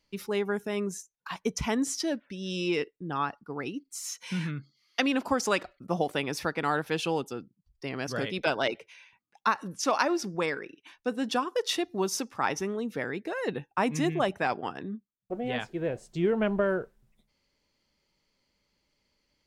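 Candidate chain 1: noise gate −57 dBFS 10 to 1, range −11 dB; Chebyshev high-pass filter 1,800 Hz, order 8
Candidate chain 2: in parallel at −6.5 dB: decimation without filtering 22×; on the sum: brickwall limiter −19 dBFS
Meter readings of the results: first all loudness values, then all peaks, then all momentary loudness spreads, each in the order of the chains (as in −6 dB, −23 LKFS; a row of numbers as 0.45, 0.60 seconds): −38.0, −31.0 LKFS; −14.0, −19.0 dBFS; 15, 8 LU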